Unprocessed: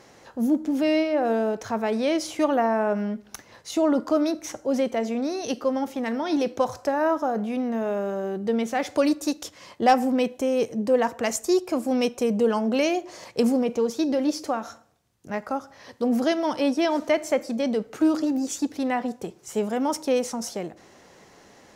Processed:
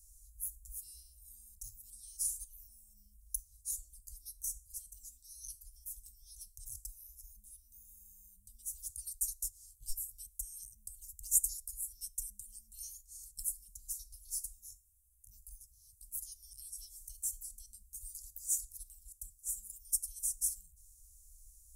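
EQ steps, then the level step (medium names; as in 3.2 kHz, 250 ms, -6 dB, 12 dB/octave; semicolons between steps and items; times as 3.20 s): inverse Chebyshev band-stop 250–2100 Hz, stop band 80 dB; bass shelf 87 Hz +9 dB; peaking EQ 8.6 kHz +4 dB 0.73 oct; +9.0 dB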